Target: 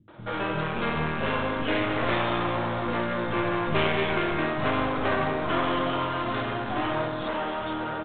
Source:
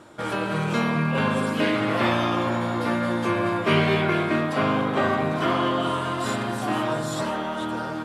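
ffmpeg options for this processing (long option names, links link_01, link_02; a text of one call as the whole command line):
ffmpeg -i in.wav -filter_complex "[0:a]aeval=exprs='clip(val(0),-1,0.0398)':channel_layout=same,acrossover=split=210[link_01][link_02];[link_02]adelay=80[link_03];[link_01][link_03]amix=inputs=2:normalize=0" -ar 8000 -c:a adpcm_ima_wav out.wav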